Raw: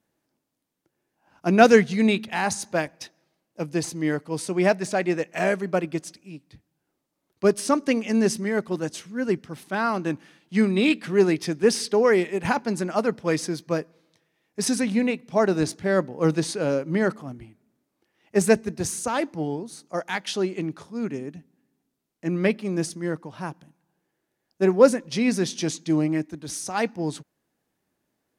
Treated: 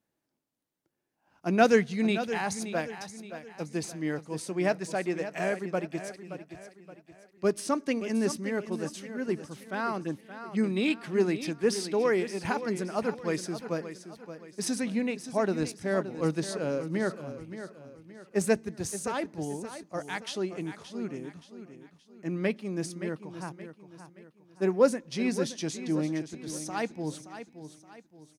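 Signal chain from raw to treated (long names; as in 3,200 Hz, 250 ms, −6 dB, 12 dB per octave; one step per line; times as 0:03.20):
0:10.04–0:10.64: phaser swept by the level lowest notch 570 Hz, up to 3,300 Hz, full sweep at −21 dBFS
repeating echo 573 ms, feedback 40%, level −11.5 dB
level −7 dB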